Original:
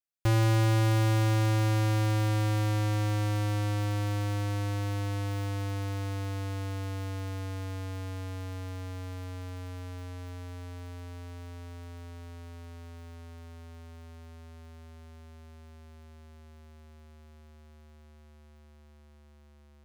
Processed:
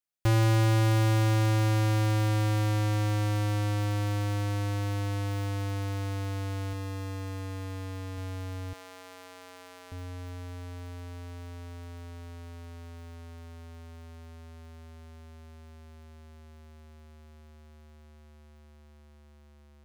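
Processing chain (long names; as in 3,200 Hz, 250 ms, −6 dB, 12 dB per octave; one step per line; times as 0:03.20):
0:06.73–0:08.18: notch comb filter 750 Hz
0:08.73–0:09.92: high-pass filter 530 Hz 12 dB per octave
level +1 dB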